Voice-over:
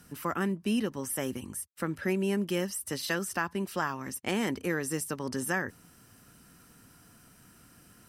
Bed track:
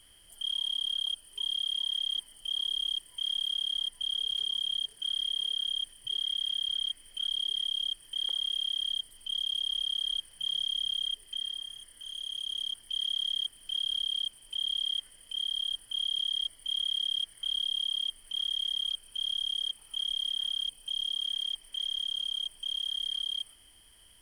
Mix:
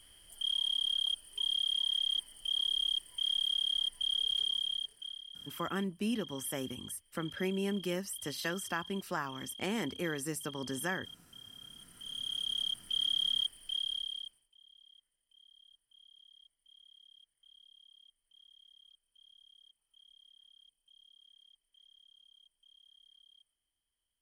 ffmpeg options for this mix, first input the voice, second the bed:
-filter_complex "[0:a]adelay=5350,volume=-5dB[a];[1:a]volume=17dB,afade=t=out:st=4.42:d=0.81:silence=0.141254,afade=t=in:st=11.51:d=0.8:silence=0.133352,afade=t=out:st=13.43:d=1.06:silence=0.0334965[b];[a][b]amix=inputs=2:normalize=0"

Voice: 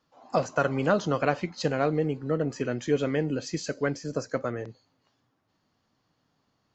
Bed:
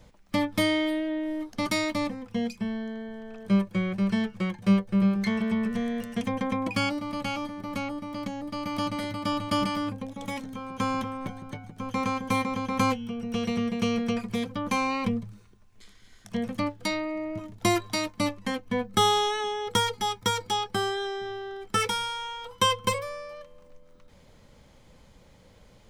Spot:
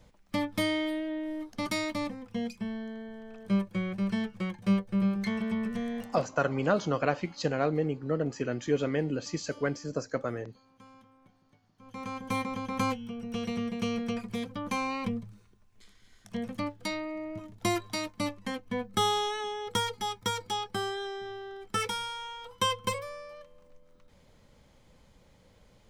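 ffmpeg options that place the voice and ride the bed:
-filter_complex "[0:a]adelay=5800,volume=-2.5dB[a];[1:a]volume=17.5dB,afade=t=out:st=6:d=0.26:silence=0.0749894,afade=t=in:st=11.76:d=0.6:silence=0.0794328[b];[a][b]amix=inputs=2:normalize=0"

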